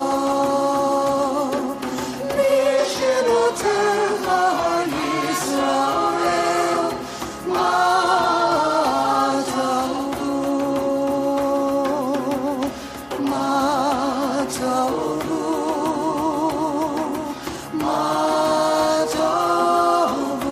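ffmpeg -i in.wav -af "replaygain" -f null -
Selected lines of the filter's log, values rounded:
track_gain = +2.0 dB
track_peak = 0.372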